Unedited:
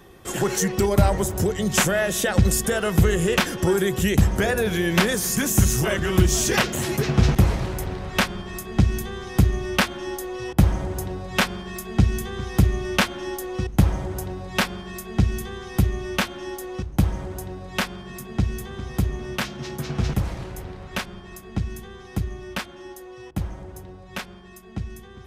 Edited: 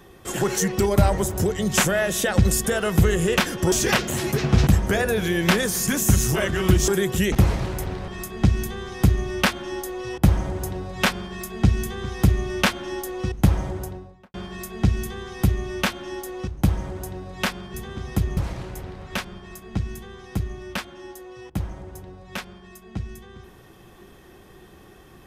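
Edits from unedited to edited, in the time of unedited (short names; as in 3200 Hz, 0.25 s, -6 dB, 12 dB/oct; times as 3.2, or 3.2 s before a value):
3.72–4.16 swap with 6.37–7.32
8.08–8.43 cut
14.01–14.69 studio fade out
18.09–18.56 cut
19.19–20.18 cut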